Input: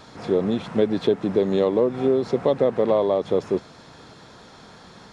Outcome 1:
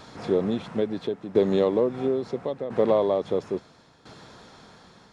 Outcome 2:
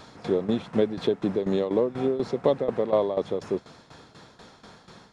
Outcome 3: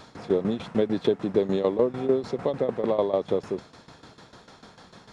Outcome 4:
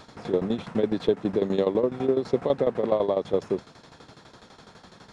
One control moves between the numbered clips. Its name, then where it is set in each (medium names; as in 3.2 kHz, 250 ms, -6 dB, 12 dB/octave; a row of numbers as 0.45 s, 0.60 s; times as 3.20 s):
tremolo, rate: 0.74 Hz, 4.1 Hz, 6.7 Hz, 12 Hz